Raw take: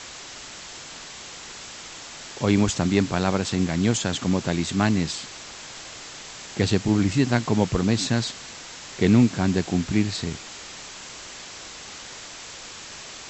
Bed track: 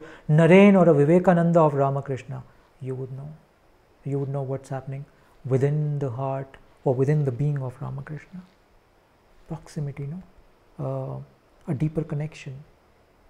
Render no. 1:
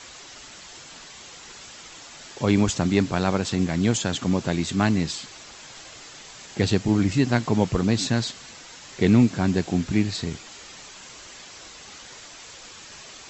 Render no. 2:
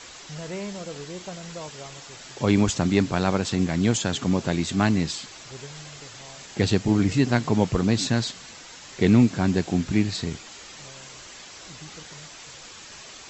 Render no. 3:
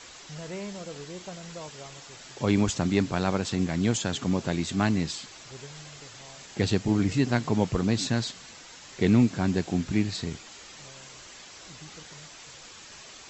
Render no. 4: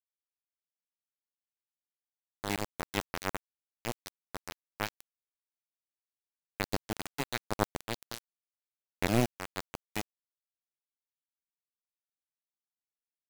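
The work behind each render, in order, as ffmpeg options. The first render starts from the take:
-af "afftdn=nr=6:nf=-40"
-filter_complex "[1:a]volume=-20dB[a];[0:a][a]amix=inputs=2:normalize=0"
-af "volume=-3.5dB"
-af "aeval=exprs='0.376*(cos(1*acos(clip(val(0)/0.376,-1,1)))-cos(1*PI/2))+0.133*(cos(3*acos(clip(val(0)/0.376,-1,1)))-cos(3*PI/2))+0.00266*(cos(5*acos(clip(val(0)/0.376,-1,1)))-cos(5*PI/2))+0.00237*(cos(7*acos(clip(val(0)/0.376,-1,1)))-cos(7*PI/2))+0.00422*(cos(8*acos(clip(val(0)/0.376,-1,1)))-cos(8*PI/2))':c=same,acrusher=bits=4:mix=0:aa=0.000001"

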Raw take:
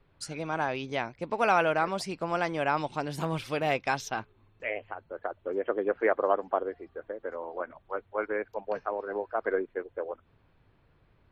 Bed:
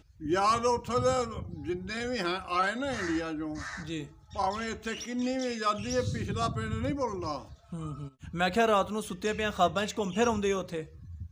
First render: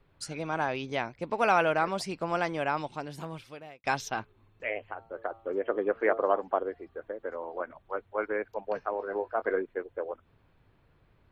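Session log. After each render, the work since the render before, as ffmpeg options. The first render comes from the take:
-filter_complex "[0:a]asettb=1/sr,asplit=3[a][b][c];[a]atrim=end=4.874[d];[b]atrim=start=4.87:end=6.42,asetpts=PTS-STARTPTS,afade=t=in:d=0.004:c=qsin,afade=t=out:st=1.546:d=0.004:c=qsin,bandreject=f=113:t=h:w=4,bandreject=f=226:t=h:w=4,bandreject=f=339:t=h:w=4,bandreject=f=452:t=h:w=4,bandreject=f=565:t=h:w=4,bandreject=f=678:t=h:w=4,bandreject=f=791:t=h:w=4,bandreject=f=904:t=h:w=4,bandreject=f=1.017k:t=h:w=4,bandreject=f=1.13k:t=h:w=4,bandreject=f=1.243k:t=h:w=4,bandreject=f=1.356k:t=h:w=4[e];[c]atrim=start=6.416[f];[d][e]acrossfade=d=0.004:c1=hsin:c2=qsin[g];[g][f]acrossfade=d=0.004:c1=qsin:c2=hsin,asettb=1/sr,asplit=3[h][i][j];[h]atrim=end=8.924[k];[i]atrim=start=8.92:end=9.62,asetpts=PTS-STARTPTS,afade=t=in:d=0.004:c=qsin,afade=t=out:st=0.696:d=0.004:c=qsin,asplit=2[l][m];[m]adelay=22,volume=-10.5dB[n];[l][n]amix=inputs=2:normalize=0,atrim=end_sample=30870[o];[j]atrim=start=9.616[p];[k][o]acrossfade=d=0.004:c1=hsin:c2=qsin[q];[q][p]acrossfade=d=0.004:c1=qsin:c2=hsin,asplit=2[r][s];[r]atrim=end=3.84,asetpts=PTS-STARTPTS,afade=t=out:st=2.38:d=1.46[t];[s]atrim=start=3.84,asetpts=PTS-STARTPTS,afade=t=in:d=0.004:c=hsin[u];[t][u]concat=n=2:v=0:a=1"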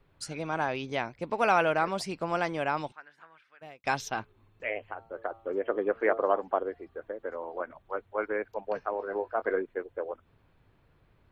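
-filter_complex "[0:a]asplit=3[a][b][c];[a]afade=t=out:st=2.91:d=0.02[d];[b]bandpass=f=1.6k:t=q:w=4,afade=t=in:st=2.91:d=0.02,afade=t=out:st=3.61:d=0.02[e];[c]afade=t=in:st=3.61:d=0.02[f];[d][e][f]amix=inputs=3:normalize=0"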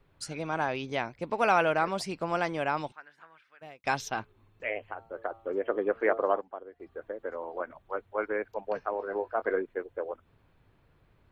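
-filter_complex "[0:a]asplit=3[a][b][c];[a]atrim=end=6.41,asetpts=PTS-STARTPTS,afade=t=out:st=5.98:d=0.43:c=log:silence=0.223872[d];[b]atrim=start=6.41:end=6.8,asetpts=PTS-STARTPTS,volume=-13dB[e];[c]atrim=start=6.8,asetpts=PTS-STARTPTS,afade=t=in:d=0.43:c=log:silence=0.223872[f];[d][e][f]concat=n=3:v=0:a=1"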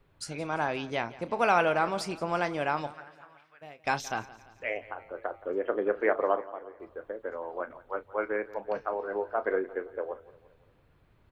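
-filter_complex "[0:a]asplit=2[a][b];[b]adelay=34,volume=-13.5dB[c];[a][c]amix=inputs=2:normalize=0,aecho=1:1:172|344|516|688:0.112|0.0583|0.0303|0.0158"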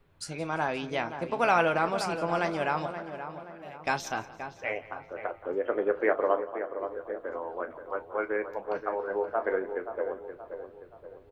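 -filter_complex "[0:a]asplit=2[a][b];[b]adelay=12,volume=-11.5dB[c];[a][c]amix=inputs=2:normalize=0,asplit=2[d][e];[e]adelay=526,lowpass=f=1.6k:p=1,volume=-9dB,asplit=2[f][g];[g]adelay=526,lowpass=f=1.6k:p=1,volume=0.48,asplit=2[h][i];[i]adelay=526,lowpass=f=1.6k:p=1,volume=0.48,asplit=2[j][k];[k]adelay=526,lowpass=f=1.6k:p=1,volume=0.48,asplit=2[l][m];[m]adelay=526,lowpass=f=1.6k:p=1,volume=0.48[n];[f][h][j][l][n]amix=inputs=5:normalize=0[o];[d][o]amix=inputs=2:normalize=0"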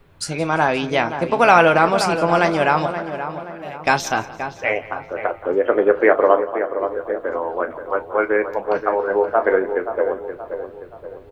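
-af "volume=12dB,alimiter=limit=-1dB:level=0:latency=1"

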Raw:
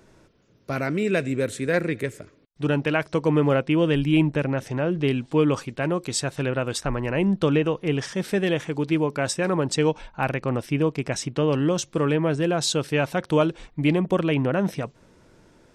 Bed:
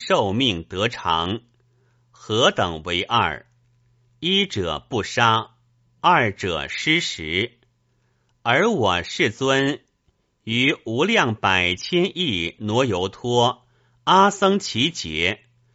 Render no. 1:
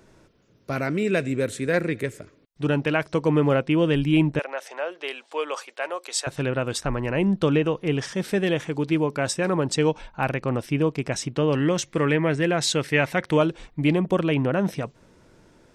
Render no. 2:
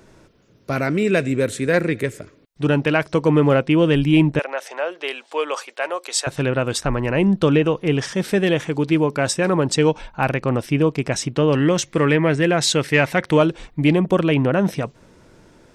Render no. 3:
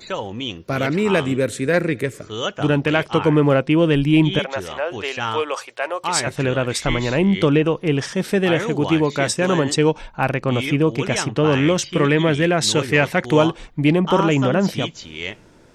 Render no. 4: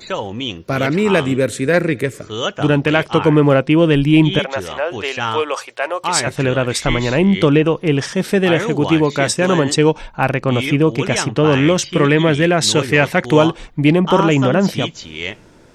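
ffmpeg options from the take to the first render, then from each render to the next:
-filter_complex "[0:a]asettb=1/sr,asplit=3[a][b][c];[a]atrim=end=4.394[d];[b]atrim=start=4.39:end=6.27,asetpts=PTS-STARTPTS,afade=t=in:d=0.004:c=qsin,afade=t=out:st=1.876:d=0.004:c=qsin,highpass=f=540:w=0.5412,highpass=f=540:w=1.3066[e];[c]atrim=start=6.266[f];[d][e]acrossfade=d=0.004:c1=hsin:c2=qsin[g];[g][f]acrossfade=d=0.004:c1=qsin:c2=hsin,asettb=1/sr,asplit=3[h][i][j];[h]atrim=end=11.554[k];[i]atrim=start=11.55:end=13.37,asetpts=PTS-STARTPTS,afade=t=in:d=0.004:c=qsin,afade=t=out:st=1.816:d=0.004:c=qsin,equalizer=f=2k:t=o:w=0.5:g=11[l];[j]atrim=start=13.366[m];[k][l]acrossfade=d=0.004:c1=hsin:c2=qsin[n];[n][m]acrossfade=d=0.004:c1=qsin:c2=hsin"
-af "acontrast=25"
-filter_complex "[1:a]volume=-8dB[a];[0:a][a]amix=inputs=2:normalize=0"
-af "volume=3.5dB,alimiter=limit=-1dB:level=0:latency=1"

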